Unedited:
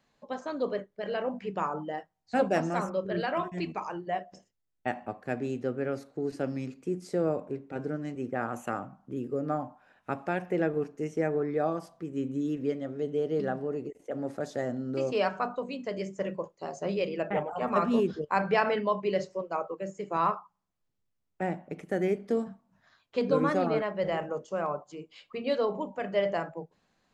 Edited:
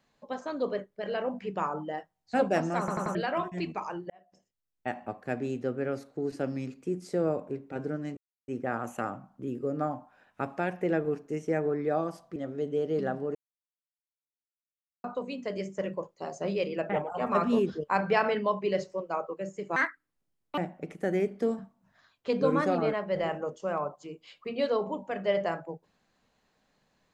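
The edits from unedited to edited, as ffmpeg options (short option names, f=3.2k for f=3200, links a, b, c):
-filter_complex "[0:a]asplit=12[a][b][c][d][e][f][g][h][i][j][k][l];[a]atrim=end=2.882[m];[b]atrim=start=2.788:end=2.882[n];[c]atrim=start=2.788:end=2.882[o];[d]atrim=start=2.788:end=2.882[p];[e]atrim=start=3.148:end=4.1,asetpts=PTS-STARTPTS,afade=t=out:st=0.948:d=0.004:c=hsin[q];[f]atrim=start=4.1:end=8.17,asetpts=PTS-STARTPTS,afade=t=in:d=1,afade=t=out:st=4.066:d=0.004:c=hsin,apad=pad_dur=0.31[r];[g]atrim=start=8.17:end=12.052,asetpts=PTS-STARTPTS,afade=t=in:d=0.004:c=hsin[s];[h]atrim=start=12.768:end=13.76,asetpts=PTS-STARTPTS,afade=t=out:st=0.988:d=0.004:c=hsin[t];[i]atrim=start=13.76:end=15.45,asetpts=PTS-STARTPTS,volume=0[u];[j]atrim=start=15.45:end=20.174,asetpts=PTS-STARTPTS,afade=t=in:d=0.004:c=hsin[v];[k]atrim=start=20.17:end=21.46,asetpts=PTS-STARTPTS,asetrate=69678,aresample=44100[w];[l]atrim=start=21.456[x];[m][n]acrossfade=d=0.004:c1=hsin:c2=hsin[y];[y][o]acrossfade=d=0.004:c1=hsin:c2=hsin[z];[z][p]acrossfade=d=0.004:c1=hsin:c2=hsin[aa];[q][r][s]concat=n=3:v=0:a=1[ab];[aa][ab]acrossfade=d=0.004:c1=hsin:c2=hsin[ac];[t][u][v]concat=n=3:v=0:a=1[ad];[ac][ad]acrossfade=d=0.004:c1=hsin:c2=hsin[ae];[ae][w]acrossfade=d=0.004:c1=hsin:c2=hsin[af];[af][x]acrossfade=d=0.004:c1=hsin:c2=hsin"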